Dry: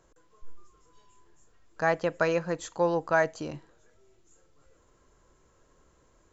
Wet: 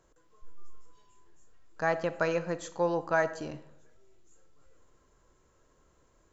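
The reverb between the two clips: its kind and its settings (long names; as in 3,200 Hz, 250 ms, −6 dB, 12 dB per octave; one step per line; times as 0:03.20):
comb and all-pass reverb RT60 0.83 s, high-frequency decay 0.55×, pre-delay 5 ms, DRR 12.5 dB
level −3 dB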